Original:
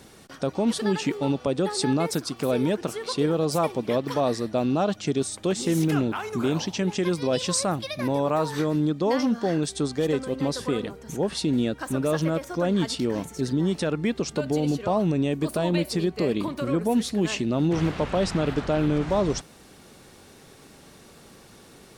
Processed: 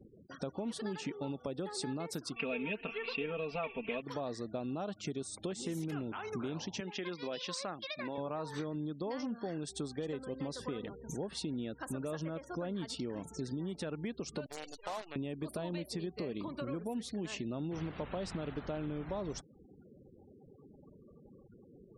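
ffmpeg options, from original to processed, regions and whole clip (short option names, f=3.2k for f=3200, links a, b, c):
-filter_complex "[0:a]asettb=1/sr,asplit=3[a][b][c];[a]atrim=end=2.364[d];[b]atrim=start=2.36:end=4.02,asetpts=PTS-STARTPTS,afade=t=in:d=0.004:c=qsin,afade=t=out:st=1.656:d=0.004:c=qsin,asubboost=boost=8:cutoff=70,lowpass=f=2.6k:t=q:w=13,aecho=1:1:4.4:0.89,atrim=end_sample=73206[e];[c]atrim=start=4.016[f];[d][e]acrossfade=d=0.004:c1=hsin:c2=qsin[g];[g][f]acrossfade=d=0.004:c1=qsin:c2=hsin,asettb=1/sr,asplit=3[h][i][j];[h]atrim=end=6.804[k];[i]atrim=start=6.8:end=8.18,asetpts=PTS-STARTPTS,afade=t=in:d=0.004:c=qsin,afade=t=out:st=1.376:d=0.004:c=qsin,highpass=200,lowpass=3.4k,tiltshelf=f=1.4k:g=-5.5[l];[j]atrim=start=8.176[m];[k][l]acrossfade=d=0.004:c1=hsin:c2=qsin[n];[n][m]acrossfade=d=0.004:c1=qsin:c2=hsin,asettb=1/sr,asplit=3[o][p][q];[o]atrim=end=14.464[r];[p]atrim=start=14.46:end=15.16,asetpts=PTS-STARTPTS,afade=t=in:d=0.004:c=qsin,afade=t=out:st=0.696:d=0.004:c=qsin,highpass=900,acrusher=bits=6:dc=4:mix=0:aa=0.000001[s];[q]atrim=start=15.156[t];[r][s]acrossfade=d=0.004:c1=hsin:c2=qsin[u];[u][t]acrossfade=d=0.004:c1=qsin:c2=hsin,afftfilt=real='re*gte(hypot(re,im),0.00891)':imag='im*gte(hypot(re,im),0.00891)':win_size=1024:overlap=0.75,acompressor=threshold=-32dB:ratio=4,volume=-5dB"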